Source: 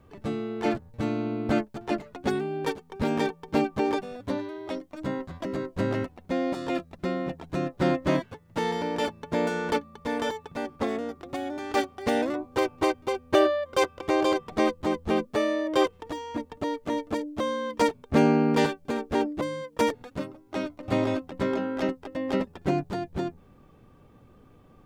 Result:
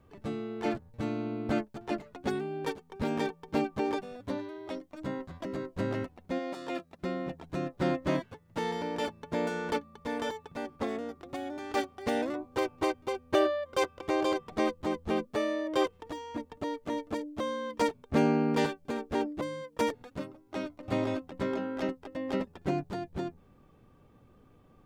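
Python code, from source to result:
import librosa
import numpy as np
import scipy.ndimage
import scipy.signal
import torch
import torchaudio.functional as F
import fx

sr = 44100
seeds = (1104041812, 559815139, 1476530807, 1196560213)

y = fx.highpass(x, sr, hz=fx.line((6.38, 550.0), (7.0, 200.0)), slope=6, at=(6.38, 7.0), fade=0.02)
y = F.gain(torch.from_numpy(y), -5.0).numpy()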